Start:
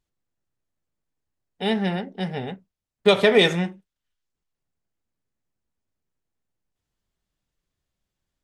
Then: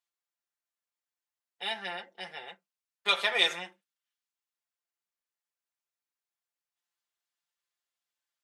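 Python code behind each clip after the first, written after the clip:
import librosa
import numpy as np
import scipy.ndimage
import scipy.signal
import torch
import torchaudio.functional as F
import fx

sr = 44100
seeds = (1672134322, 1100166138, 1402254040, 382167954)

y = scipy.signal.sosfilt(scipy.signal.butter(2, 970.0, 'highpass', fs=sr, output='sos'), x)
y = y + 0.78 * np.pad(y, (int(5.8 * sr / 1000.0), 0))[:len(y)]
y = y * librosa.db_to_amplitude(-5.5)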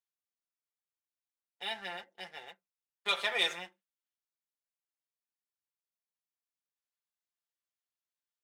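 y = fx.leveller(x, sr, passes=1)
y = y * librosa.db_to_amplitude(-7.5)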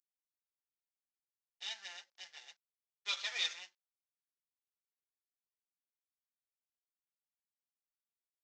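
y = fx.cvsd(x, sr, bps=32000)
y = np.diff(y, prepend=0.0)
y = y * librosa.db_to_amplitude(3.0)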